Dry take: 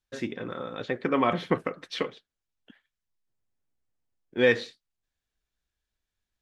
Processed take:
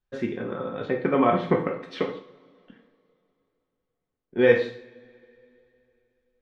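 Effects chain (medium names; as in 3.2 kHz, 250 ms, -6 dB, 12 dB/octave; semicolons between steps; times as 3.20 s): low-pass 1.2 kHz 6 dB/octave; two-slope reverb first 0.51 s, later 3 s, from -26 dB, DRR 1.5 dB; trim +3 dB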